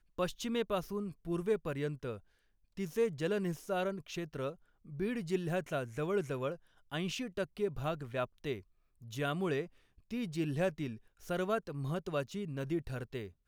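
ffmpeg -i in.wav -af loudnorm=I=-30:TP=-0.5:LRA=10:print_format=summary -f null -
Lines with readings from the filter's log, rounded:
Input Integrated:    -37.3 LUFS
Input True Peak:     -20.6 dBTP
Input LRA:             1.3 LU
Input Threshold:     -47.5 LUFS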